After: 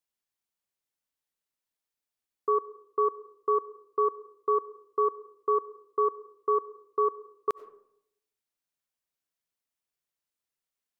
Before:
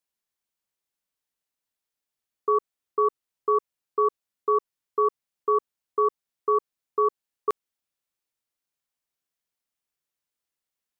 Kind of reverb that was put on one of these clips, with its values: digital reverb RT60 0.74 s, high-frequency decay 0.4×, pre-delay 50 ms, DRR 17 dB; gain -3 dB

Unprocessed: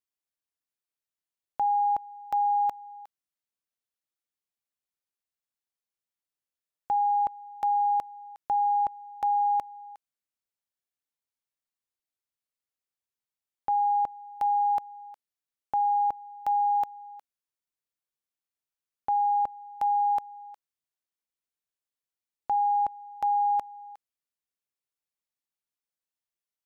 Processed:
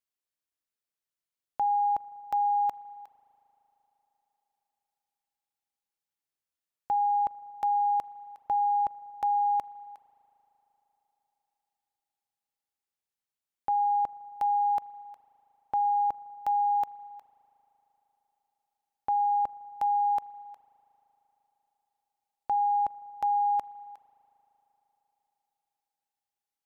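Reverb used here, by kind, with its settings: spring tank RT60 4 s, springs 38 ms, chirp 25 ms, DRR 19 dB; gain -1 dB

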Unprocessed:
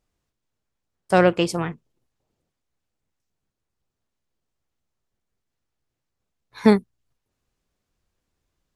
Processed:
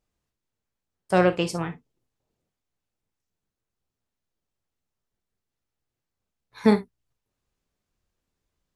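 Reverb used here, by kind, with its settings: non-linear reverb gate 80 ms flat, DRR 8.5 dB; gain -4 dB

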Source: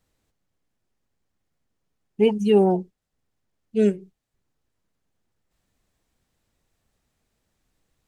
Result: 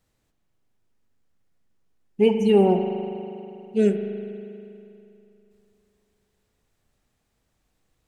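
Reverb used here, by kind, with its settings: spring tank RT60 2.8 s, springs 40 ms, chirp 80 ms, DRR 5 dB

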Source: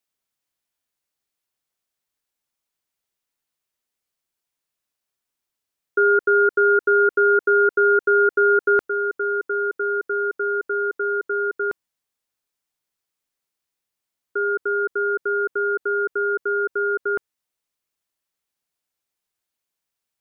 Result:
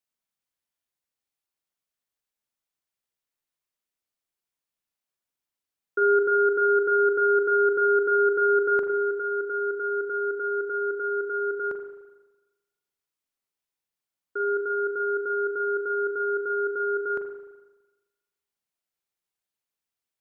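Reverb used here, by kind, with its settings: spring tank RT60 1.2 s, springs 37/42 ms, chirp 20 ms, DRR 5.5 dB; gain -6.5 dB

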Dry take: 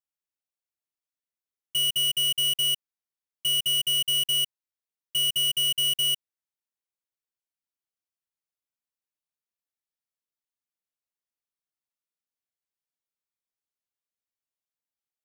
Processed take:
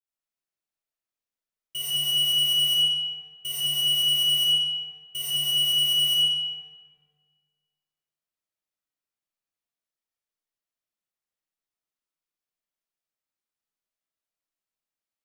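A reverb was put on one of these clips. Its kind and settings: digital reverb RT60 1.8 s, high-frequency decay 0.65×, pre-delay 30 ms, DRR -8.5 dB; gain -7 dB

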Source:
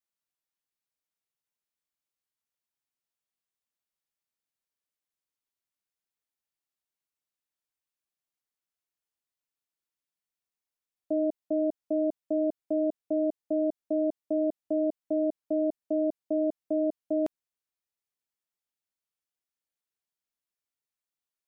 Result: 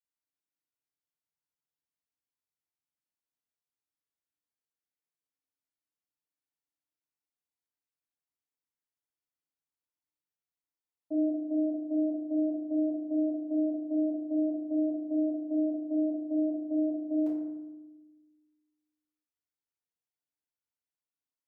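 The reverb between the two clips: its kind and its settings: FDN reverb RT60 1.1 s, low-frequency decay 1.55×, high-frequency decay 0.4×, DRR -8.5 dB; gain -15.5 dB

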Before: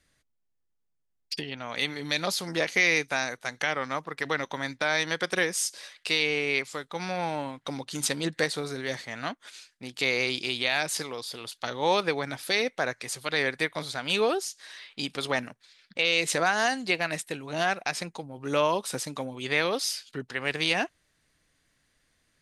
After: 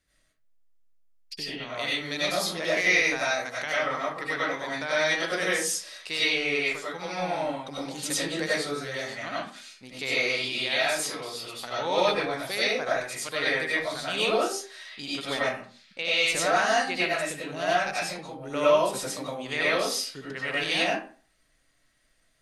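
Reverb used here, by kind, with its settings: digital reverb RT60 0.41 s, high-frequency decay 0.65×, pre-delay 55 ms, DRR -8 dB; gain -7 dB

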